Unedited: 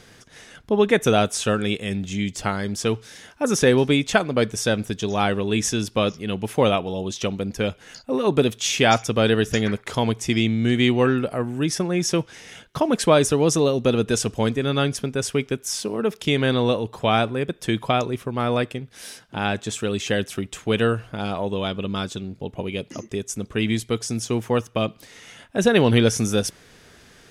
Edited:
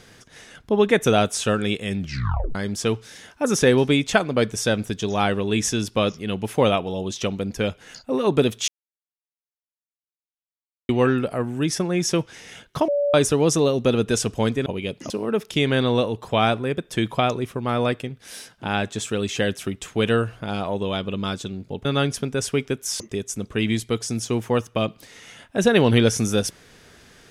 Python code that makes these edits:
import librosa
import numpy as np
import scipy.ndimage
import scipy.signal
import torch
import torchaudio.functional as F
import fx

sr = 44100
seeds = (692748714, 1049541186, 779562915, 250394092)

y = fx.edit(x, sr, fx.tape_stop(start_s=1.99, length_s=0.56),
    fx.silence(start_s=8.68, length_s=2.21),
    fx.bleep(start_s=12.88, length_s=0.26, hz=575.0, db=-18.0),
    fx.swap(start_s=14.66, length_s=1.15, other_s=22.56, other_length_s=0.44), tone=tone)